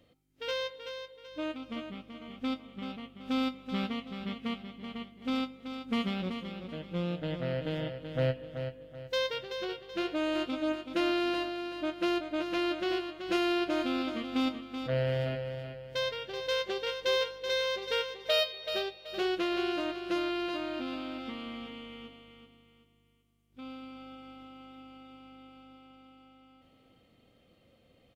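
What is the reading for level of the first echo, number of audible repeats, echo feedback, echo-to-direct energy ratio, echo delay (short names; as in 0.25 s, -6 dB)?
-8.0 dB, 3, 35%, -7.5 dB, 0.38 s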